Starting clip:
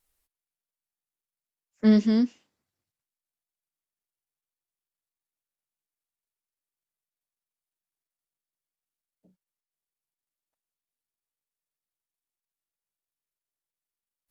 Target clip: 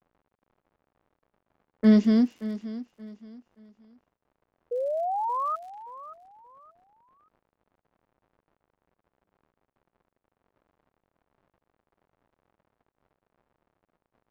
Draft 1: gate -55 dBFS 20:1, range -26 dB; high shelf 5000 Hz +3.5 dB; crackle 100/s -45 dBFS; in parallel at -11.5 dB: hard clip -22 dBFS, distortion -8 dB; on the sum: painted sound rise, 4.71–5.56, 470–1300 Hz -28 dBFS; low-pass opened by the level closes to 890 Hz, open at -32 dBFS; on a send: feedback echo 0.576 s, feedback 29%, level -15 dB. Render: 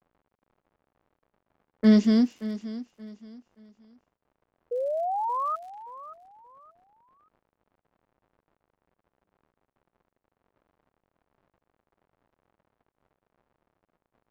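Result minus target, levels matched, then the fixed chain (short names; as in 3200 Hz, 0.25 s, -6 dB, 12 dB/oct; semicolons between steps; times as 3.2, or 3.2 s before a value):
8000 Hz band +5.5 dB
gate -55 dBFS 20:1, range -26 dB; high shelf 5000 Hz -7 dB; crackle 100/s -45 dBFS; in parallel at -11.5 dB: hard clip -22 dBFS, distortion -8 dB; on the sum: painted sound rise, 4.71–5.56, 470–1300 Hz -28 dBFS; low-pass opened by the level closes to 890 Hz, open at -32 dBFS; on a send: feedback echo 0.576 s, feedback 29%, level -15 dB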